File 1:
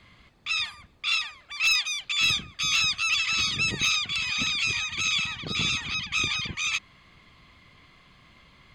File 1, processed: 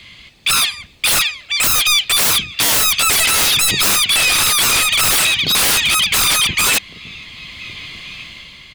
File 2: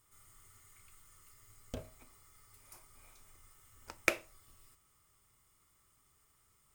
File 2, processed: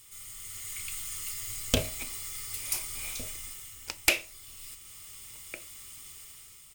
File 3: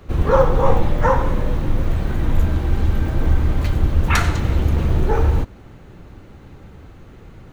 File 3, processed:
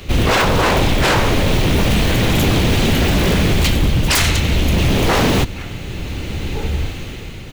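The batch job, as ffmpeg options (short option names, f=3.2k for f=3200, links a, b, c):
-filter_complex "[0:a]highshelf=f=1.9k:t=q:w=1.5:g=10,dynaudnorm=f=180:g=7:m=7.5dB,asplit=2[a][b];[b]adelay=1458,volume=-18dB,highshelf=f=4k:g=-32.8[c];[a][c]amix=inputs=2:normalize=0,aeval=exprs='0.141*(abs(mod(val(0)/0.141+3,4)-2)-1)':c=same,volume=8dB"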